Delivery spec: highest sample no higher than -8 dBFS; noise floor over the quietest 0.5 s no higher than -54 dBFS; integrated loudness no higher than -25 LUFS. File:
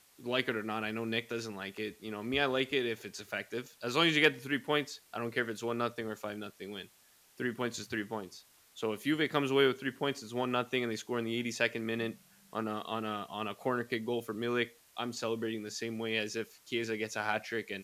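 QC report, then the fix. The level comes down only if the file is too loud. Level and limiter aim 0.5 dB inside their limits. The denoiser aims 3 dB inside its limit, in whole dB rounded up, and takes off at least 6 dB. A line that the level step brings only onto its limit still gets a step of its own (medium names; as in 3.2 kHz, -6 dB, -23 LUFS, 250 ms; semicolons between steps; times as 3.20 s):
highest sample -12.0 dBFS: pass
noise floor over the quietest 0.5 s -64 dBFS: pass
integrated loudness -34.5 LUFS: pass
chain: none needed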